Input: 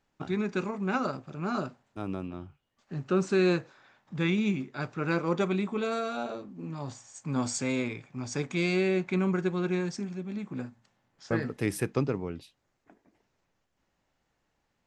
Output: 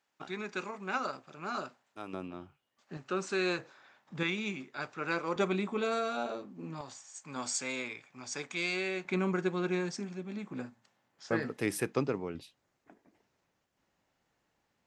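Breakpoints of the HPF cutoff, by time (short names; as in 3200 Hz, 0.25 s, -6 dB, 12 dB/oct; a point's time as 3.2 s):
HPF 6 dB/oct
940 Hz
from 2.13 s 350 Hz
from 2.97 s 850 Hz
from 3.59 s 320 Hz
from 4.23 s 750 Hz
from 5.36 s 270 Hz
from 6.81 s 1100 Hz
from 9.05 s 290 Hz
from 12.35 s 100 Hz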